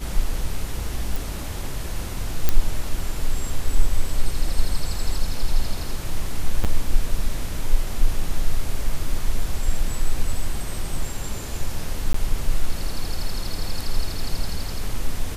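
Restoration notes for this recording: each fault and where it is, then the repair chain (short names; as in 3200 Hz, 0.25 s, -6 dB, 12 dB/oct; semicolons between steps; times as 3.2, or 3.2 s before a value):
1.16 pop
2.49 pop -4 dBFS
6.64–6.65 gap 7.7 ms
12.13–12.14 gap 14 ms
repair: de-click; interpolate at 6.64, 7.7 ms; interpolate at 12.13, 14 ms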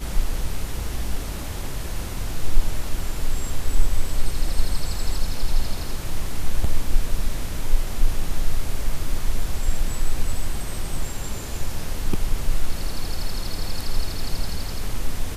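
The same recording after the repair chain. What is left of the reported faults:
none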